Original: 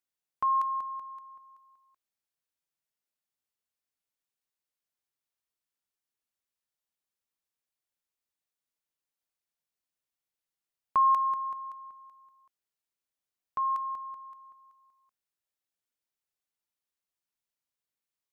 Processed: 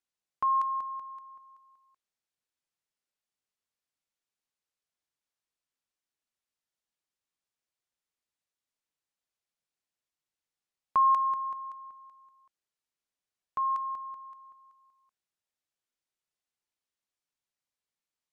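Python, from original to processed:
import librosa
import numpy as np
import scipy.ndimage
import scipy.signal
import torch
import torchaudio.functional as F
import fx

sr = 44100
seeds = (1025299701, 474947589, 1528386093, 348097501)

y = scipy.signal.sosfilt(scipy.signal.butter(2, 9000.0, 'lowpass', fs=sr, output='sos'), x)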